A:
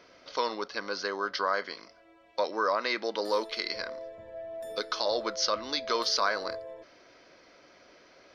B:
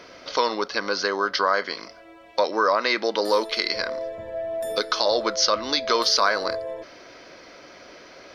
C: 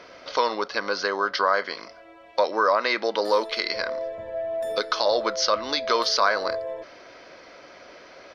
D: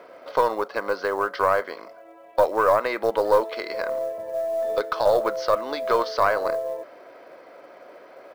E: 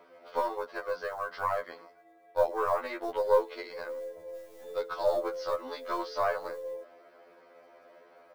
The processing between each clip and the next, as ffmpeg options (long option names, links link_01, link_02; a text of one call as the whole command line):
ffmpeg -i in.wav -filter_complex "[0:a]equalizer=frequency=11000:width=1.5:gain=5,asplit=2[link_01][link_02];[link_02]acompressor=threshold=-36dB:ratio=6,volume=0.5dB[link_03];[link_01][link_03]amix=inputs=2:normalize=0,volume=5dB" out.wav
ffmpeg -i in.wav -af "firequalizer=gain_entry='entry(320,0);entry(560,4);entry(11000,-6)':delay=0.05:min_phase=1,volume=-3.5dB" out.wav
ffmpeg -i in.wav -af "bandpass=frequency=590:width_type=q:width=0.8:csg=0,aeval=exprs='0.316*(cos(1*acos(clip(val(0)/0.316,-1,1)))-cos(1*PI/2))+0.0398*(cos(2*acos(clip(val(0)/0.316,-1,1)))-cos(2*PI/2))+0.00251*(cos(7*acos(clip(val(0)/0.316,-1,1)))-cos(7*PI/2))':channel_layout=same,acrusher=bits=7:mode=log:mix=0:aa=0.000001,volume=3.5dB" out.wav
ffmpeg -i in.wav -af "afftfilt=real='re*2*eq(mod(b,4),0)':imag='im*2*eq(mod(b,4),0)':win_size=2048:overlap=0.75,volume=-7.5dB" out.wav